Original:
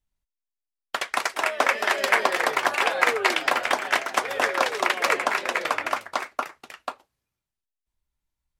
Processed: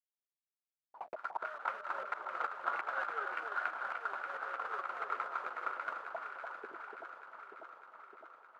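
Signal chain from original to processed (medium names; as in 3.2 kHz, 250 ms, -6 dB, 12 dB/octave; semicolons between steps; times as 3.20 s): median filter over 25 samples; bit crusher 8-bit; auto-wah 240–1400 Hz, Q 7.5, up, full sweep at -29 dBFS; slow attack 200 ms; on a send: echo whose repeats swap between lows and highs 298 ms, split 1.1 kHz, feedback 82%, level -5 dB; on the sum: vibrato 0.34 Hz 47 cents; trim +9.5 dB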